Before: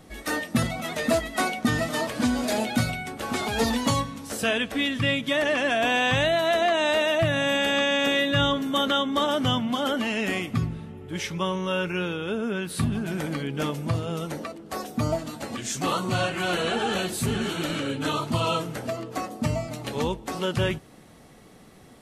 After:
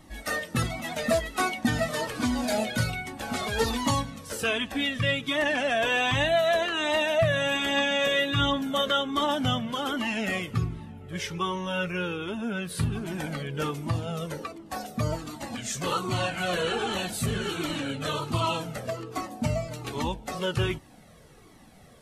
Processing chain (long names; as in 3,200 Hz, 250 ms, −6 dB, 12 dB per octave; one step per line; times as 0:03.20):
flanger whose copies keep moving one way falling 1.3 Hz
level +2.5 dB